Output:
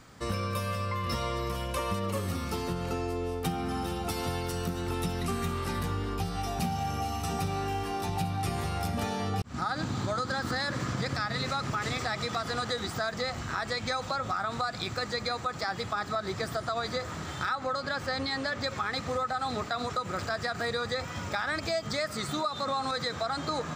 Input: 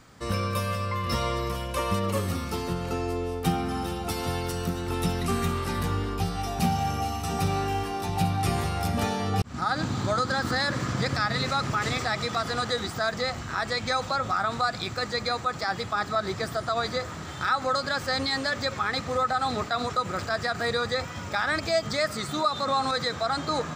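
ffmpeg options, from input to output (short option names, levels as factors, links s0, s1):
-filter_complex "[0:a]asettb=1/sr,asplit=3[s0][s1][s2];[s0]atrim=end=17.554[s3];[s1]atrim=start=17.55:end=18.64,asetpts=PTS-STARTPTS,afade=t=in:d=0.004:c=qsin,afade=t=out:st=1.086:d=0.004:c=qsin,highshelf=f=5600:g=-8.5[s4];[s2]atrim=start=18.636[s5];[s3][s4]acrossfade=d=0.004:c1=hsin:c2=qsin[s6];[s6][s5]acrossfade=d=0.004:c1=qsin:c2=hsin,acompressor=threshold=0.0355:ratio=3"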